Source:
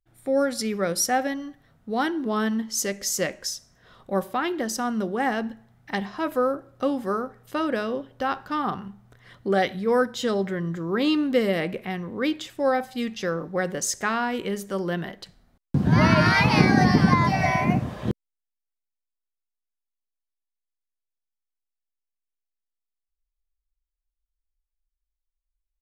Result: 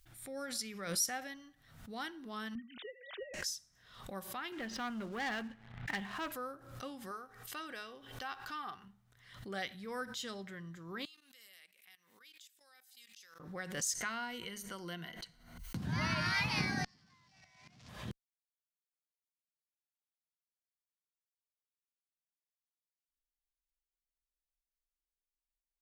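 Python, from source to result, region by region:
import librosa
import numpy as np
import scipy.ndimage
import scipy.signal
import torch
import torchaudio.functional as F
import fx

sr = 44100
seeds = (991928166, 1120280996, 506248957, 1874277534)

y = fx.chain(x, sr, fx.sine_speech(),
    fx.peak_eq(hz=2700.0, db=-12.0, octaves=1.7),
    fx.band_squash(depth_pct=100), at=(2.55, 3.34))
y = fx.chain(y, sr, fx.lowpass(hz=3200.0, slope=24),
    fx.leveller(passes=2), at=(4.52, 6.32))
y = fx.chain(y, sr, fx.low_shelf(hz=340.0, db=-7.0),
    fx.comb(ms=2.6, depth=0.35), at=(7.11, 8.84))
y = fx.chain(y, sr, fx.differentiator(),
    fx.level_steps(step_db=16), at=(11.05, 13.4))
y = fx.chain(y, sr, fx.ripple_eq(per_octave=1.9, db=9),
    fx.band_squash(depth_pct=70), at=(13.95, 15.77))
y = fx.chain(y, sr, fx.zero_step(step_db=-21.5),
    fx.lowpass_res(hz=5400.0, q=2.1),
    fx.gate_flip(shuts_db=-12.0, range_db=-35), at=(16.84, 17.89))
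y = fx.tone_stack(y, sr, knobs='5-5-5')
y = fx.pre_swell(y, sr, db_per_s=73.0)
y = y * 10.0 ** (-2.5 / 20.0)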